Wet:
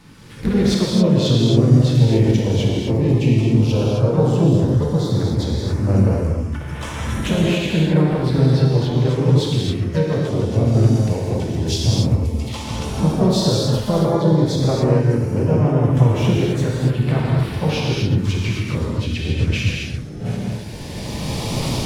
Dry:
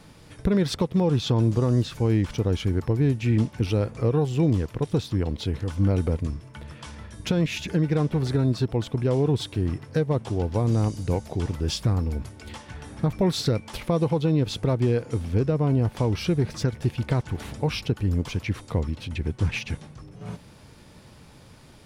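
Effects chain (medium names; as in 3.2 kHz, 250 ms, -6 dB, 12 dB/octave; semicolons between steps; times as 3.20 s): recorder AGC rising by 13 dB/s; dynamic bell 4.6 kHz, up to +3 dB, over -45 dBFS, Q 0.75; gated-style reverb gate 300 ms flat, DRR -4 dB; LFO notch saw up 0.11 Hz 570–7900 Hz; harmony voices +3 st -6 dB, +12 st -17 dB; treble shelf 9.1 kHz -5 dB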